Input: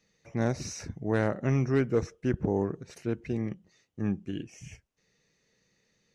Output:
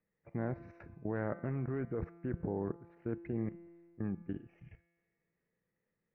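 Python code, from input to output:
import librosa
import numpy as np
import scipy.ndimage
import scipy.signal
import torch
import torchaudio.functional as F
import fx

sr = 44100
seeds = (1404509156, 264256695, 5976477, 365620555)

y = scipy.signal.sosfilt(scipy.signal.butter(4, 1900.0, 'lowpass', fs=sr, output='sos'), x)
y = fx.level_steps(y, sr, step_db=17)
y = fx.comb_fb(y, sr, f0_hz=170.0, decay_s=1.8, harmonics='all', damping=0.0, mix_pct=70)
y = F.gain(torch.from_numpy(y), 8.5).numpy()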